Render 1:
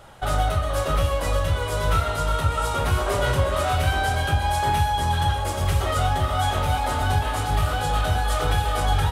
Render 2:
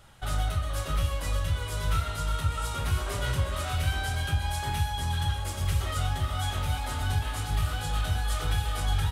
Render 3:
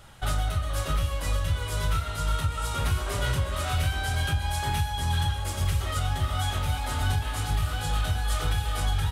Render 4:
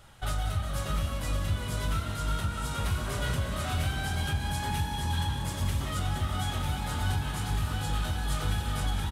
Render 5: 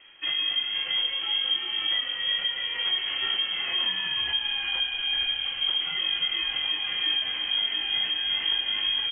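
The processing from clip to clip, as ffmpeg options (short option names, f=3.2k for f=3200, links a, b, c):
-af "equalizer=f=600:t=o:w=2.3:g=-10,volume=-4dB"
-af "alimiter=limit=-21dB:level=0:latency=1:release=448,volume=4.5dB"
-filter_complex "[0:a]asplit=9[a][b][c][d][e][f][g][h][i];[b]adelay=184,afreqshift=49,volume=-10dB[j];[c]adelay=368,afreqshift=98,volume=-13.9dB[k];[d]adelay=552,afreqshift=147,volume=-17.8dB[l];[e]adelay=736,afreqshift=196,volume=-21.6dB[m];[f]adelay=920,afreqshift=245,volume=-25.5dB[n];[g]adelay=1104,afreqshift=294,volume=-29.4dB[o];[h]adelay=1288,afreqshift=343,volume=-33.3dB[p];[i]adelay=1472,afreqshift=392,volume=-37.1dB[q];[a][j][k][l][m][n][o][p][q]amix=inputs=9:normalize=0,volume=-4dB"
-af "lowpass=f=2.8k:t=q:w=0.5098,lowpass=f=2.8k:t=q:w=0.6013,lowpass=f=2.8k:t=q:w=0.9,lowpass=f=2.8k:t=q:w=2.563,afreqshift=-3300,volume=2dB"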